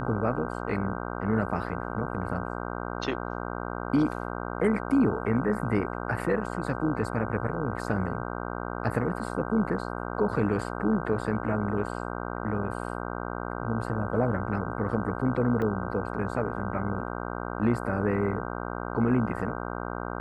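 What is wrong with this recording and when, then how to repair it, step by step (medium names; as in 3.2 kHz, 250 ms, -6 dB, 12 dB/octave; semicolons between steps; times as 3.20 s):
buzz 60 Hz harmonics 26 -34 dBFS
15.62 s: dropout 3.3 ms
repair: de-hum 60 Hz, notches 26; interpolate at 15.62 s, 3.3 ms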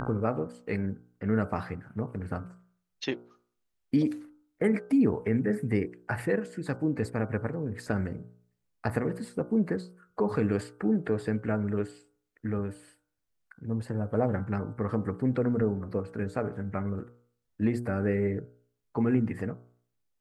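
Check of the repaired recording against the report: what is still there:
nothing left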